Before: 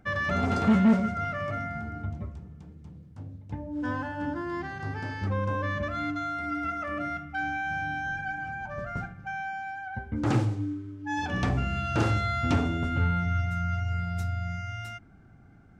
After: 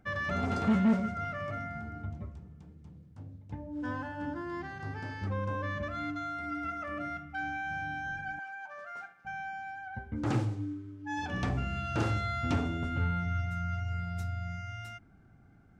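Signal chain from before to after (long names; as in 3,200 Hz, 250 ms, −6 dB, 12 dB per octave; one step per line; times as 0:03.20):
0:08.39–0:09.25: high-pass filter 770 Hz 12 dB per octave
level −5 dB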